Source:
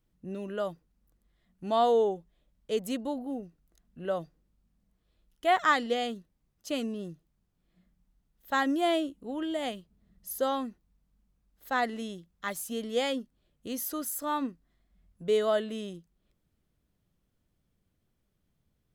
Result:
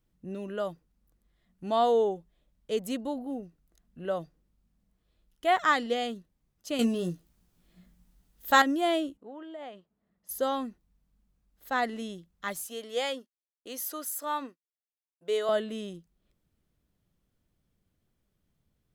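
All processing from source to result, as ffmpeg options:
ffmpeg -i in.wav -filter_complex "[0:a]asettb=1/sr,asplit=3[link_01][link_02][link_03];[link_01]atrim=end=6.794[link_04];[link_02]atrim=start=6.79:end=8.62,asetpts=PTS-STARTPTS,afade=type=in:duration=0.004:curve=qsin,afade=type=out:start_time=1.826:duration=0.004:curve=qsin,highshelf=frequency=3700:gain=6.5,acontrast=72,asplit=2[link_05][link_06];[link_06]adelay=17,volume=-7dB[link_07];[link_05][link_07]amix=inputs=2:normalize=0,atrim=end_sample=80703[link_08];[link_03]atrim=start=8.616[link_09];[link_04][link_08]acrossfade=duration=0.004:curve1=hsin:curve2=qsin[link_10];[link_10][link_09]acrossfade=duration=0.004:curve1=qsin:curve2=hsin,asettb=1/sr,asplit=3[link_11][link_12][link_13];[link_11]atrim=end=9.174[link_14];[link_12]atrim=start=9.17:end=10.29,asetpts=PTS-STARTPTS,afade=type=in:duration=0.004:curve=qsin,afade=type=out:start_time=1.116:duration=0.004:curve=qsin,acompressor=threshold=-36dB:ratio=5:attack=3.2:release=140:knee=1:detection=peak,bandpass=frequency=850:width_type=q:width=0.68[link_15];[link_13]atrim=start=10.286[link_16];[link_14][link_15]acrossfade=duration=0.004:curve1=hsin:curve2=qsin[link_17];[link_17][link_16]acrossfade=duration=0.004:curve1=qsin:curve2=hsin,asettb=1/sr,asplit=3[link_18][link_19][link_20];[link_18]atrim=end=12.674[link_21];[link_19]atrim=start=12.67:end=15.49,asetpts=PTS-STARTPTS,afade=type=in:duration=0.004:curve=qsin,afade=type=out:start_time=2.816:duration=0.004:curve=qsin,highpass=440,agate=range=-33dB:threshold=-54dB:ratio=3:release=100:detection=peak[link_22];[link_20]atrim=start=15.486[link_23];[link_21][link_22]acrossfade=duration=0.004:curve1=hsin:curve2=qsin[link_24];[link_24][link_23]acrossfade=duration=0.004:curve1=qsin:curve2=hsin" out.wav

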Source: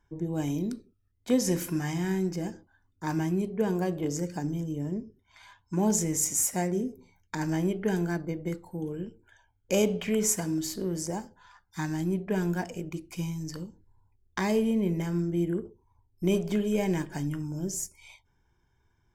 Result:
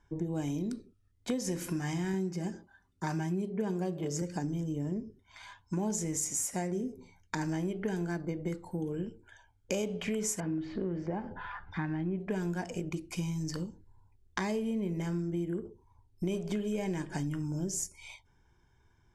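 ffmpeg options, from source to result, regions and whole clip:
ffmpeg -i in.wav -filter_complex "[0:a]asettb=1/sr,asplit=3[link_01][link_02][link_03];[link_01]atrim=end=2.134[link_04];[link_02]atrim=start=2.13:end=4.22,asetpts=PTS-STARTPTS,afade=type=in:duration=0.004:curve=qsin,afade=type=out:start_time=2.086:duration=0.004:curve=qsin,highpass=45,aecho=1:1:5.1:0.51,atrim=end_sample=92169[link_05];[link_03]atrim=start=4.216[link_06];[link_04][link_05]acrossfade=duration=0.004:curve1=hsin:curve2=qsin[link_07];[link_07][link_06]acrossfade=duration=0.004:curve1=qsin:curve2=hsin,asettb=1/sr,asplit=3[link_08][link_09][link_10];[link_08]atrim=end=10.404[link_11];[link_09]atrim=start=10.4:end=12.2,asetpts=PTS-STARTPTS,afade=type=in:duration=0.004:curve=qsin,afade=type=out:start_time=1.796:duration=0.004:curve=qsin,bandreject=frequency=960:width=27,acompressor=mode=upward:threshold=-31dB:ratio=2.5:attack=3.2:release=140:knee=2.83:detection=peak,lowpass=frequency=2700:width=0.5412,lowpass=frequency=2700:width=1.3066[link_12];[link_10]atrim=start=12.196[link_13];[link_11][link_12]acrossfade=duration=0.004:curve1=hsin:curve2=qsin[link_14];[link_14][link_13]acrossfade=duration=0.004:curve1=qsin:curve2=hsin,lowpass=frequency=11000:width=0.5412,lowpass=frequency=11000:width=1.3066,acompressor=threshold=-34dB:ratio=5,volume=3dB" out.wav

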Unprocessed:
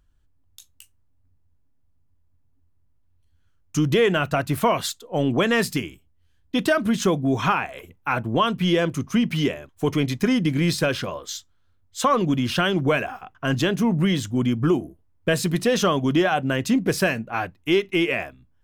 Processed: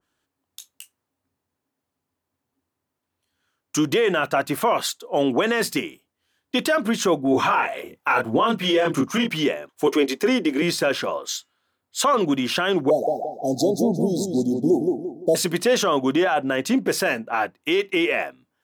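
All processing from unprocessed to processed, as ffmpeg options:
ffmpeg -i in.wav -filter_complex "[0:a]asettb=1/sr,asplit=3[link_01][link_02][link_03];[link_01]atrim=end=7.314[link_04];[link_02]atrim=start=7.31:end=9.29,asetpts=PTS-STARTPTS,afade=type=in:duration=0.004:curve=qsin,afade=type=out:start_time=1.976:duration=0.004:curve=qsin,aphaser=in_gain=1:out_gain=1:delay=2.2:decay=0.46:speed=1.8:type=sinusoidal,asplit=2[link_05][link_06];[link_06]adelay=26,volume=-2.5dB[link_07];[link_05][link_07]amix=inputs=2:normalize=0,atrim=end_sample=87318[link_08];[link_03]atrim=start=9.286[link_09];[link_04][link_08]acrossfade=duration=0.004:curve1=hsin:curve2=qsin[link_10];[link_10][link_09]acrossfade=duration=0.004:curve1=qsin:curve2=hsin,asettb=1/sr,asplit=3[link_11][link_12][link_13];[link_11]atrim=end=9.874[link_14];[link_12]atrim=start=9.87:end=10.62,asetpts=PTS-STARTPTS,afade=type=in:duration=0.004:curve=qsin,afade=type=out:start_time=0.746:duration=0.004:curve=qsin,highpass=frequency=230:width=0.5412,highpass=frequency=230:width=1.3066,equalizer=frequency=400:width=3.4:gain=8.5[link_15];[link_13]atrim=start=10.616[link_16];[link_14][link_15]acrossfade=duration=0.004:curve1=hsin:curve2=qsin[link_17];[link_17][link_16]acrossfade=duration=0.004:curve1=qsin:curve2=hsin,asettb=1/sr,asplit=3[link_18][link_19][link_20];[link_18]atrim=end=11.364[link_21];[link_19]atrim=start=11.36:end=12.01,asetpts=PTS-STARTPTS,afade=type=in:duration=0.004:curve=qsin,afade=type=out:start_time=0.646:duration=0.004:curve=qsin,bandreject=frequency=5900:width=10,bandreject=frequency=152.5:width_type=h:width=4,bandreject=frequency=305:width_type=h:width=4,bandreject=frequency=457.5:width_type=h:width=4,bandreject=frequency=610:width_type=h:width=4,bandreject=frequency=762.5:width_type=h:width=4,bandreject=frequency=915:width_type=h:width=4,bandreject=frequency=1067.5:width_type=h:width=4,bandreject=frequency=1220:width_type=h:width=4,bandreject=frequency=1372.5:width_type=h:width=4,bandreject=frequency=1525:width_type=h:width=4,bandreject=frequency=1677.5:width_type=h:width=4,bandreject=frequency=1830:width_type=h:width=4,bandreject=frequency=1982.5:width_type=h:width=4,bandreject=frequency=2135:width_type=h:width=4,bandreject=frequency=2287.5:width_type=h:width=4,bandreject=frequency=2440:width_type=h:width=4,bandreject=frequency=2592.5:width_type=h:width=4,bandreject=frequency=2745:width_type=h:width=4,bandreject=frequency=2897.5:width_type=h:width=4[link_22];[link_20]atrim=start=12.006[link_23];[link_21][link_22]acrossfade=duration=0.004:curve1=hsin:curve2=qsin[link_24];[link_24][link_23]acrossfade=duration=0.004:curve1=qsin:curve2=hsin,asettb=1/sr,asplit=3[link_25][link_26][link_27];[link_25]atrim=end=12.904[link_28];[link_26]atrim=start=12.9:end=15.35,asetpts=PTS-STARTPTS,afade=type=in:duration=0.004:curve=qsin,afade=type=out:start_time=2.446:duration=0.004:curve=qsin,asuperstop=centerf=1800:order=20:qfactor=0.59,asplit=2[link_29][link_30];[link_30]adelay=172,lowpass=frequency=3000:poles=1,volume=-5dB,asplit=2[link_31][link_32];[link_32]adelay=172,lowpass=frequency=3000:poles=1,volume=0.38,asplit=2[link_33][link_34];[link_34]adelay=172,lowpass=frequency=3000:poles=1,volume=0.38,asplit=2[link_35][link_36];[link_36]adelay=172,lowpass=frequency=3000:poles=1,volume=0.38,asplit=2[link_37][link_38];[link_38]adelay=172,lowpass=frequency=3000:poles=1,volume=0.38[link_39];[link_29][link_31][link_33][link_35][link_37][link_39]amix=inputs=6:normalize=0,atrim=end_sample=108045[link_40];[link_27]atrim=start=15.346[link_41];[link_28][link_40]acrossfade=duration=0.004:curve1=hsin:curve2=qsin[link_42];[link_42][link_41]acrossfade=duration=0.004:curve1=qsin:curve2=hsin,highpass=340,alimiter=limit=-16.5dB:level=0:latency=1:release=10,adynamicequalizer=threshold=0.00891:dfrequency=1800:dqfactor=0.7:tfrequency=1800:tqfactor=0.7:attack=5:release=100:ratio=0.375:range=2.5:mode=cutabove:tftype=highshelf,volume=6dB" out.wav

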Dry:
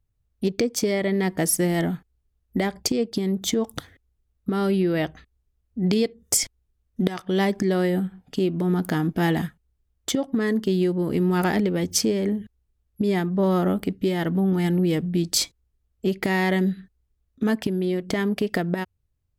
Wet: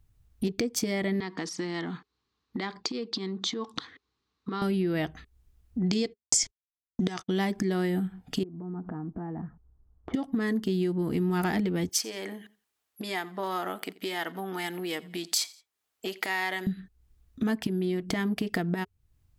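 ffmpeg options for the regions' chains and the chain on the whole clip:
ffmpeg -i in.wav -filter_complex "[0:a]asettb=1/sr,asplit=3[link_01][link_02][link_03];[link_01]atrim=end=1.204[link_04];[link_02]atrim=start=1.2:end=4.62,asetpts=PTS-STARTPTS,afade=type=in:duration=0.004:curve=qsin,afade=type=out:start_time=3.416:duration=0.004:curve=qsin,acompressor=threshold=-26dB:ratio=5:attack=3.2:release=140:knee=1:detection=peak,highpass=260,equalizer=frequency=650:width_type=q:width=4:gain=-9,equalizer=frequency=1100:width_type=q:width=4:gain=9,equalizer=frequency=4100:width_type=q:width=4:gain=8,lowpass=frequency=5900:width=0.5412,lowpass=frequency=5900:width=1.3066[link_05];[link_03]atrim=start=4.616[link_06];[link_04][link_05]acrossfade=duration=0.004:curve1=hsin:curve2=qsin[link_07];[link_07][link_06]acrossfade=duration=0.004:curve1=qsin:curve2=hsin,asettb=1/sr,asplit=3[link_08][link_09][link_10];[link_08]atrim=end=5.824[link_11];[link_09]atrim=start=5.82:end=7.31,asetpts=PTS-STARTPTS,afade=type=in:duration=0.004:curve=qsin,afade=type=out:start_time=1.486:duration=0.004:curve=qsin,lowpass=frequency=6700:width_type=q:width=2.9,agate=range=-49dB:threshold=-42dB:ratio=16:release=100:detection=peak[link_12];[link_10]atrim=start=7.306[link_13];[link_11][link_12]acrossfade=duration=0.004:curve1=hsin:curve2=qsin[link_14];[link_14][link_13]acrossfade=duration=0.004:curve1=qsin:curve2=hsin,asettb=1/sr,asplit=3[link_15][link_16][link_17];[link_15]atrim=end=8.434[link_18];[link_16]atrim=start=8.43:end=10.14,asetpts=PTS-STARTPTS,afade=type=in:duration=0.004:curve=qsin,afade=type=out:start_time=1.706:duration=0.004:curve=qsin,lowpass=frequency=1200:width=0.5412,lowpass=frequency=1200:width=1.3066,acompressor=threshold=-40dB:ratio=4:attack=3.2:release=140:knee=1:detection=peak[link_19];[link_17]atrim=start=10.136[link_20];[link_18][link_19]acrossfade=duration=0.004:curve1=hsin:curve2=qsin[link_21];[link_21][link_20]acrossfade=duration=0.004:curve1=qsin:curve2=hsin,asettb=1/sr,asplit=3[link_22][link_23][link_24];[link_22]atrim=end=11.894[link_25];[link_23]atrim=start=11.89:end=16.67,asetpts=PTS-STARTPTS,afade=type=in:duration=0.004:curve=qsin,afade=type=out:start_time=4.776:duration=0.004:curve=qsin,highpass=660,aecho=1:1:86|172:0.0708|0.0198,atrim=end_sample=210798[link_26];[link_24]atrim=start=16.666[link_27];[link_25][link_26]acrossfade=duration=0.004:curve1=hsin:curve2=qsin[link_28];[link_28][link_27]acrossfade=duration=0.004:curve1=qsin:curve2=hsin,equalizer=frequency=550:width=7.4:gain=-10.5,bandreject=frequency=410:width=12,acompressor=threshold=-46dB:ratio=2,volume=9dB" out.wav

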